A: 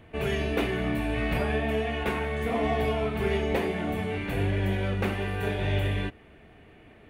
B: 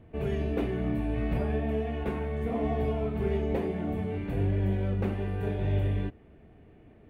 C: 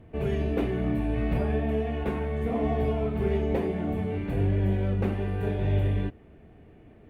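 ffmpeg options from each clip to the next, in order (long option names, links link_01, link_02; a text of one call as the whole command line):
ffmpeg -i in.wav -af "tiltshelf=frequency=870:gain=7.5,volume=-7dB" out.wav
ffmpeg -i in.wav -af "volume=2.5dB" -ar 48000 -c:a libopus -b:a 64k out.opus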